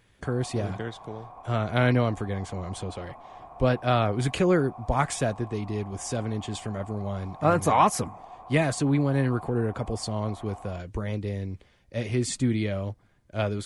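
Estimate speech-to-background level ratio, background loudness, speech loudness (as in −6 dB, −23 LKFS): 18.0 dB, −45.5 LKFS, −27.5 LKFS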